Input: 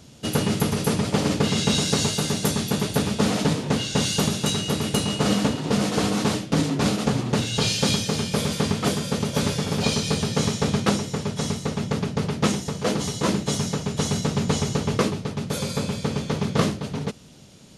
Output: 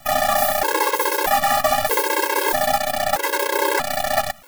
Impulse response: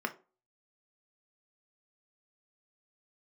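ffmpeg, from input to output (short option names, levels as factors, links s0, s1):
-filter_complex "[0:a]acrossover=split=490|3000[s0][s1][s2];[s1]acompressor=threshold=0.0178:ratio=6[s3];[s0][s3][s2]amix=inputs=3:normalize=0,asetrate=175077,aresample=44100,acontrast=46,acrusher=bits=4:dc=4:mix=0:aa=0.000001,afftfilt=real='re*gt(sin(2*PI*0.79*pts/sr)*(1-2*mod(floor(b*sr/1024/280),2)),0)':imag='im*gt(sin(2*PI*0.79*pts/sr)*(1-2*mod(floor(b*sr/1024/280),2)),0)':win_size=1024:overlap=0.75,volume=1.26"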